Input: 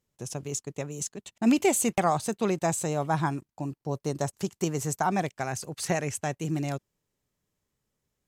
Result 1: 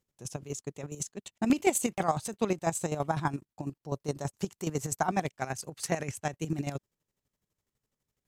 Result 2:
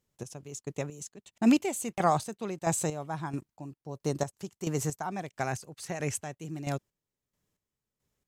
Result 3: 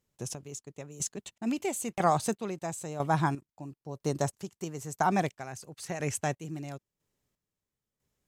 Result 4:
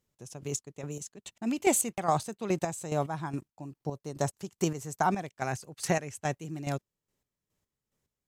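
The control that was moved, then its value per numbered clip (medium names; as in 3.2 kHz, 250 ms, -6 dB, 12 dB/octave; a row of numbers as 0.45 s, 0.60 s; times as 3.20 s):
square tremolo, rate: 12 Hz, 1.5 Hz, 1 Hz, 2.4 Hz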